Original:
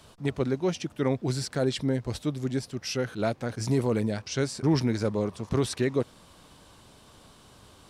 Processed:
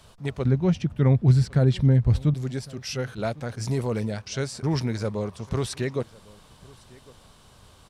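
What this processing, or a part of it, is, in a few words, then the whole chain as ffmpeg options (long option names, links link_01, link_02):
low shelf boost with a cut just above: -filter_complex "[0:a]lowshelf=frequency=67:gain=7.5,equalizer=frequency=300:width_type=o:width=0.67:gain=-6,asettb=1/sr,asplit=3[link_01][link_02][link_03];[link_01]atrim=end=0.454[link_04];[link_02]atrim=start=0.45:end=2.34,asetpts=PTS-STARTPTS,afade=type=in:duration=0.004:curve=qsin,afade=type=out:start_time=1.886:duration=0.004:curve=qsin,bass=frequency=250:gain=14,treble=frequency=4000:gain=-8[link_05];[link_03]atrim=start=2.336[link_06];[link_04][link_05]acrossfade=duration=0.004:curve1=hsin:curve2=qsin[link_07];[link_07][link_06]acrossfade=duration=0.004:curve1=qsin:curve2=hsin,aecho=1:1:1104:0.0668"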